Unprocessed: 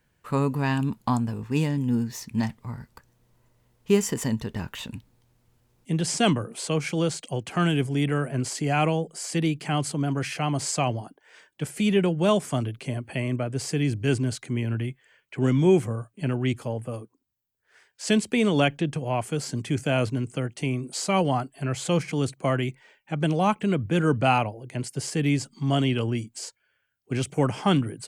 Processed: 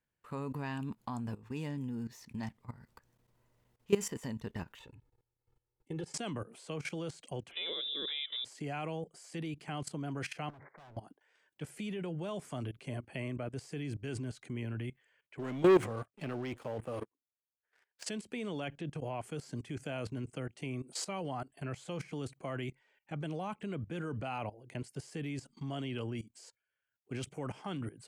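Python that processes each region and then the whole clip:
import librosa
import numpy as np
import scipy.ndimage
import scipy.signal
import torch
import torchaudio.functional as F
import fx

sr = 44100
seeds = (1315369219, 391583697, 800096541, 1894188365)

y = fx.chain(x, sr, fx.high_shelf(hz=2000.0, db=-10.0),
    fx.comb(ms=2.3, depth=0.96),
    fx.level_steps(step_db=15), at=(4.79, 6.14))
y = fx.chain(y, sr, fx.freq_invert(carrier_hz=3700),
    fx.low_shelf_res(hz=590.0, db=9.0, q=3.0), at=(7.51, 8.45))
y = fx.chain(y, sr, fx.steep_lowpass(hz=2100.0, slope=96),
    fx.overload_stage(gain_db=33.0), at=(10.49, 10.97))
y = fx.chain(y, sr, fx.bass_treble(bass_db=-7, treble_db=-7),
    fx.leveller(passes=3), at=(15.39, 18.04))
y = fx.bass_treble(y, sr, bass_db=-3, treble_db=-3)
y = fx.level_steps(y, sr, step_db=17)
y = y * 10.0 ** (-4.0 / 20.0)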